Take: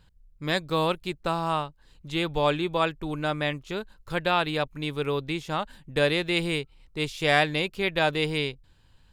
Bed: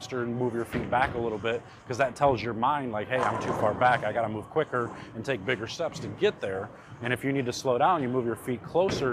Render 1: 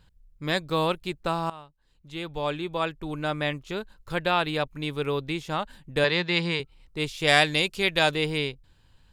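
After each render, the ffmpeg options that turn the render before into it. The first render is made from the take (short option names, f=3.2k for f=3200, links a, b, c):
-filter_complex "[0:a]asettb=1/sr,asplit=3[a][b][c];[a]atrim=end=6.044[d];[b]atrim=start=6.04:end=6.6,asetpts=PTS-STARTPTS,afade=t=in:d=0.004:c=qsin,afade=t=out:st=0.556:d=0.004:c=qsin,highpass=170,equalizer=f=180:t=q:w=4:g=7,equalizer=f=290:t=q:w=4:g=-7,equalizer=f=660:t=q:w=4:g=-4,equalizer=f=960:t=q:w=4:g=8,equalizer=f=1.8k:t=q:w=4:g=5,equalizer=f=4.7k:t=q:w=4:g=8,lowpass=f=6.8k:w=0.5412,lowpass=f=6.8k:w=1.3066[e];[c]atrim=start=6.596[f];[d][e]acrossfade=d=0.004:c1=hsin:c2=qsin[g];[g][f]acrossfade=d=0.004:c1=qsin:c2=hsin,asettb=1/sr,asplit=3[h][i][j];[h]atrim=end=7.274[k];[i]atrim=start=7.27:end=8.15,asetpts=PTS-STARTPTS,afade=t=in:d=0.004:c=qsin,afade=t=out:st=0.876:d=0.004:c=qsin,equalizer=f=7.3k:t=o:w=2.2:g=10[l];[j]atrim=start=8.146[m];[k][l]acrossfade=d=0.004:c1=hsin:c2=qsin[n];[n][m]acrossfade=d=0.004:c1=qsin:c2=hsin,asplit=2[o][p];[o]atrim=end=1.5,asetpts=PTS-STARTPTS,afade=t=out:st=1.496:d=0.004:c=hsin:silence=0.11885[q];[p]atrim=start=1.5,asetpts=PTS-STARTPTS,afade=t=in:d=1.97:silence=0.11885[r];[q][r]concat=n=2:v=0:a=1"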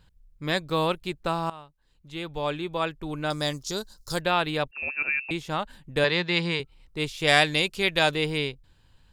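-filter_complex "[0:a]asettb=1/sr,asplit=3[a][b][c];[a]atrim=end=3.304[d];[b]atrim=start=3.3:end=4.21,asetpts=PTS-STARTPTS,afade=t=in:d=0.004:c=qsin,afade=t=out:st=0.906:d=0.004:c=qsin,highshelf=f=3.7k:t=q:w=3:g=13[e];[c]atrim=start=4.206[f];[d][e]acrossfade=d=0.004:c1=hsin:c2=qsin[g];[g][f]acrossfade=d=0.004:c1=qsin:c2=hsin,asettb=1/sr,asplit=3[h][i][j];[h]atrim=end=4.714[k];[i]atrim=start=4.71:end=5.31,asetpts=PTS-STARTPTS,afade=t=in:d=0.004:c=qsin,afade=t=out:st=0.596:d=0.004:c=qsin,lowpass=f=2.4k:t=q:w=0.5098,lowpass=f=2.4k:t=q:w=0.6013,lowpass=f=2.4k:t=q:w=0.9,lowpass=f=2.4k:t=q:w=2.563,afreqshift=-2800[l];[j]atrim=start=5.306[m];[k][l]acrossfade=d=0.004:c1=hsin:c2=qsin[n];[n][m]acrossfade=d=0.004:c1=qsin:c2=hsin"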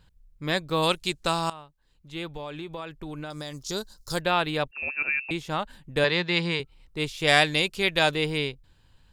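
-filter_complex "[0:a]asplit=3[a][b][c];[a]afade=t=out:st=0.82:d=0.02[d];[b]equalizer=f=6.7k:w=0.52:g=14,afade=t=in:st=0.82:d=0.02,afade=t=out:st=1.52:d=0.02[e];[c]afade=t=in:st=1.52:d=0.02[f];[d][e][f]amix=inputs=3:normalize=0,asettb=1/sr,asplit=3[g][h][i];[g]atrim=end=2.324[j];[h]atrim=start=2.32:end=3.69,asetpts=PTS-STARTPTS,afade=t=in:d=0.004:c=qsin,afade=t=out:st=1.366:d=0.004:c=qsin,acompressor=threshold=-32dB:ratio=6:attack=3.2:release=140:knee=1:detection=peak[k];[i]atrim=start=3.686[l];[j][k]acrossfade=d=0.004:c1=hsin:c2=qsin[m];[m][l]acrossfade=d=0.004:c1=qsin:c2=hsin"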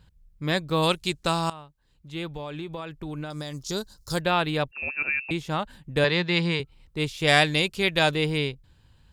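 -af "highpass=f=95:p=1,lowshelf=f=160:g=11"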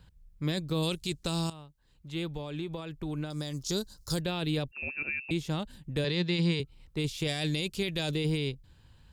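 -filter_complex "[0:a]alimiter=limit=-16.5dB:level=0:latency=1:release=12,acrossover=split=470|3000[a][b][c];[b]acompressor=threshold=-48dB:ratio=2.5[d];[a][d][c]amix=inputs=3:normalize=0"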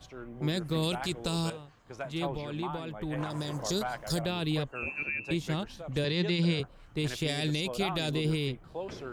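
-filter_complex "[1:a]volume=-13.5dB[a];[0:a][a]amix=inputs=2:normalize=0"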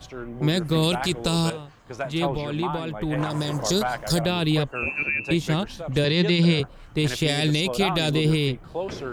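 -af "volume=8.5dB"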